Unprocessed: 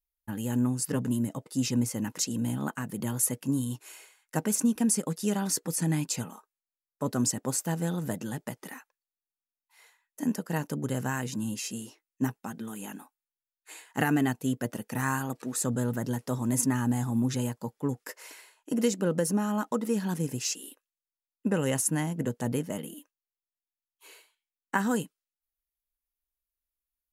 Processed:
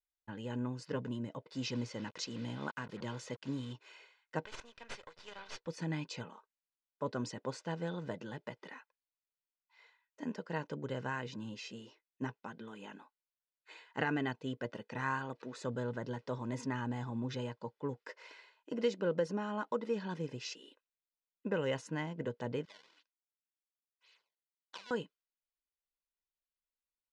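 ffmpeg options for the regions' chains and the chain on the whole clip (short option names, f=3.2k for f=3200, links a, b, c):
-filter_complex "[0:a]asettb=1/sr,asplit=3[a][b][c];[a]atrim=end=1.514[d];[b]atrim=start=1.51:end=3.73,asetpts=PTS-STARTPTS,afade=t=in:d=0.004:c=qsin,afade=t=out:st=2.216:d=0.004:c=qsin,acrossover=split=7600[e][f];[f]acompressor=threshold=-50dB:ratio=4:attack=1:release=60[g];[e][g]amix=inputs=2:normalize=0,highshelf=f=4.7k:g=8.5,acrusher=bits=6:mix=0:aa=0.5[h];[c]atrim=start=3.726[i];[d][h]acrossfade=d=0.004:c1=hsin:c2=qsin[j];[j][i]acrossfade=d=0.004:c1=qsin:c2=hsin,asettb=1/sr,asplit=3[k][l][m];[k]atrim=end=4.454[n];[l]atrim=start=4.45:end=5.67,asetpts=PTS-STARTPTS,afade=t=in:d=0.004:c=qsin,afade=t=out:st=1.216:d=0.004:c=qsin,highpass=920,aeval=exprs='max(val(0),0)':c=same[o];[m]atrim=start=5.666[p];[n][o]acrossfade=d=0.004:c1=hsin:c2=qsin[q];[q][p]acrossfade=d=0.004:c1=qsin:c2=hsin,asettb=1/sr,asplit=3[r][s][t];[r]atrim=end=22.654[u];[s]atrim=start=22.65:end=24.91,asetpts=PTS-STARTPTS,afade=t=in:d=0.004:c=qsin,afade=t=out:st=2.256:d=0.004:c=qsin,acrusher=samples=20:mix=1:aa=0.000001:lfo=1:lforange=32:lforate=1.9,aderivative[v];[t]atrim=start=24.906[w];[u][v]acrossfade=d=0.004:c1=hsin:c2=qsin[x];[x][w]acrossfade=d=0.004:c1=qsin:c2=hsin,lowpass=f=4.5k:w=0.5412,lowpass=f=4.5k:w=1.3066,lowshelf=f=130:g=-10.5,aecho=1:1:2:0.38,volume=-5.5dB"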